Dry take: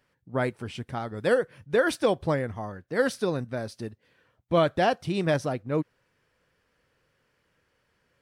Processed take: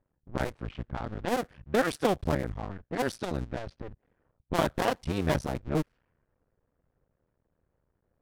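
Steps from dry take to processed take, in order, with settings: cycle switcher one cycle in 2, muted; level-controlled noise filter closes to 840 Hz, open at -26 dBFS; bass shelf 120 Hz +10 dB; trim -2 dB

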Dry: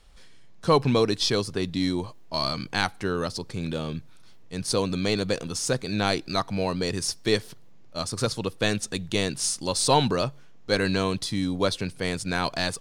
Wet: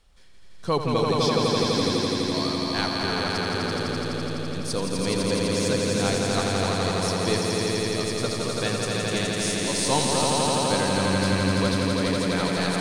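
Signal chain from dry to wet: echo with a slow build-up 84 ms, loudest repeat 5, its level -3.5 dB; trim -4.5 dB

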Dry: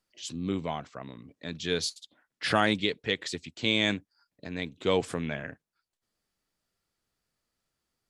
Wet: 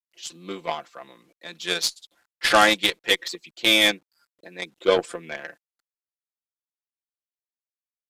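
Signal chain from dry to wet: 3.10–5.37 s: resonances exaggerated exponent 1.5; high-pass 430 Hz 12 dB/octave; comb 5.8 ms, depth 86%; bit crusher 11-bit; Chebyshev shaper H 5 -14 dB, 6 -32 dB, 7 -13 dB, 8 -40 dB, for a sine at -11 dBFS; resampled via 32 kHz; trim +6.5 dB

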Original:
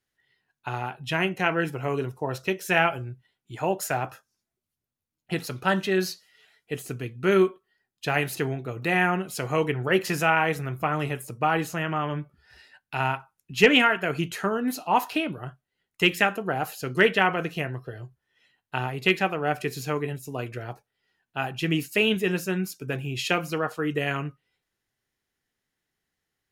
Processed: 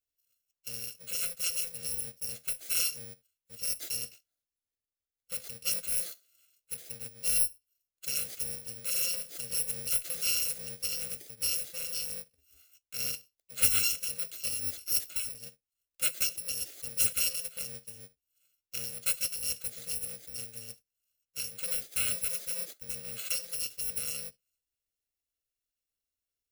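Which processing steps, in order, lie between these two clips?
bit-reversed sample order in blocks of 128 samples; static phaser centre 400 Hz, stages 4; trim -7.5 dB

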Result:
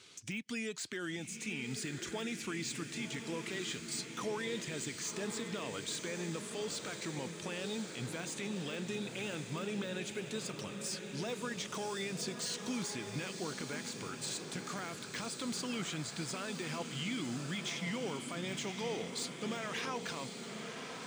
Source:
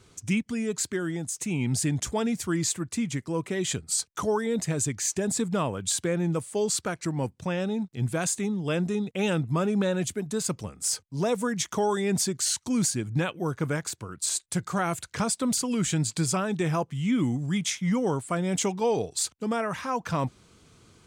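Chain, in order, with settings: frequency weighting D; de-esser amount 80%; bass shelf 120 Hz -7 dB; compression, threshold -29 dBFS, peak gain reduction 8 dB; peak limiter -25 dBFS, peak gain reduction 8 dB; echo that smears into a reverb 1066 ms, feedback 64%, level -6.5 dB; trim -5 dB

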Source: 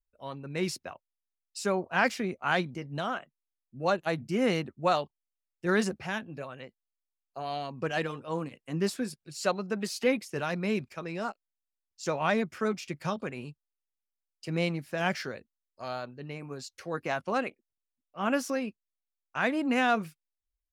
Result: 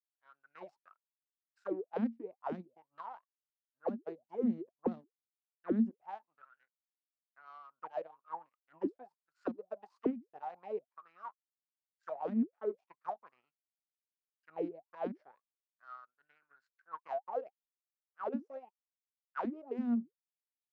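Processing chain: power-law waveshaper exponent 2; auto-wah 230–1600 Hz, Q 18, down, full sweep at -32 dBFS; trim +17 dB

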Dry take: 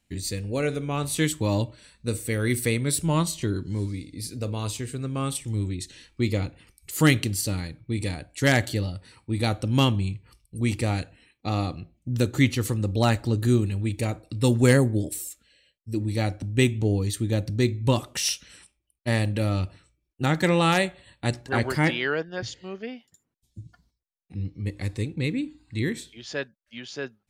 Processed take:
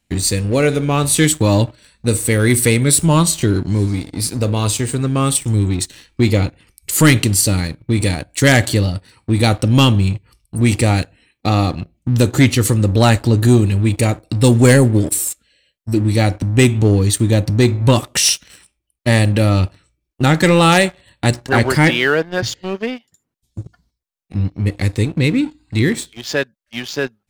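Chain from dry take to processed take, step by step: dynamic bell 8.6 kHz, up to +4 dB, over -47 dBFS, Q 2; waveshaping leveller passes 2; in parallel at -2.5 dB: compression, threshold -25 dBFS, peak gain reduction 14.5 dB; on the sum: trim +2 dB

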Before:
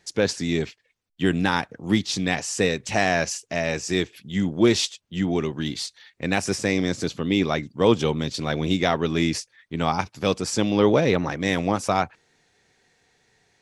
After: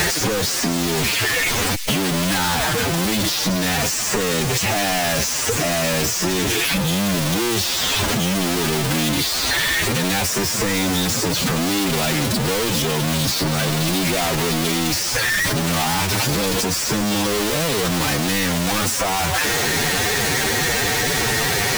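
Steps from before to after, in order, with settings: one-bit comparator; feedback echo behind a high-pass 65 ms, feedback 72%, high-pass 3.2 kHz, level -13 dB; time stretch by phase-locked vocoder 1.6×; in parallel at -6 dB: small samples zeroed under -31.5 dBFS; on the sum: three bands compressed up and down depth 100%

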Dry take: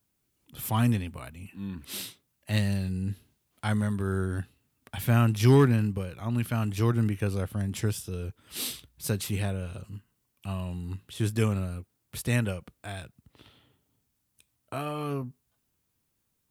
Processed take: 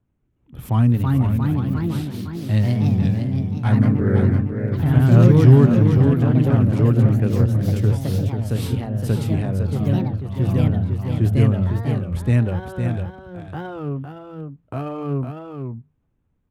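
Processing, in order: local Wiener filter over 9 samples; tilt EQ -3 dB/octave; hum notches 50/100/150/200 Hz; in parallel at +2 dB: peak limiter -13.5 dBFS, peak gain reduction 9.5 dB; on the sum: ever faster or slower copies 416 ms, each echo +2 st, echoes 3; on a send: delay 507 ms -6.5 dB; on the sum: warped record 33 1/3 rpm, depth 160 cents; trim -4.5 dB

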